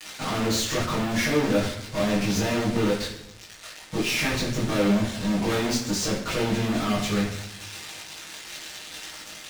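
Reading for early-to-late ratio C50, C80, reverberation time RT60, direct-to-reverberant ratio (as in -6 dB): 4.5 dB, 8.0 dB, 0.80 s, -9.0 dB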